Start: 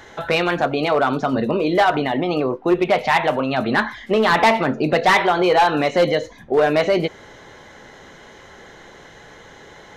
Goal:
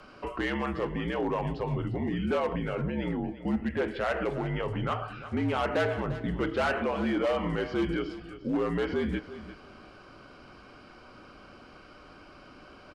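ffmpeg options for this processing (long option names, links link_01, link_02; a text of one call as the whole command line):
ffmpeg -i in.wav -af "alimiter=limit=-14dB:level=0:latency=1:release=67,afreqshift=-77,asetrate=33957,aresample=44100,aecho=1:1:348|696:0.2|0.0419,volume=-8dB" out.wav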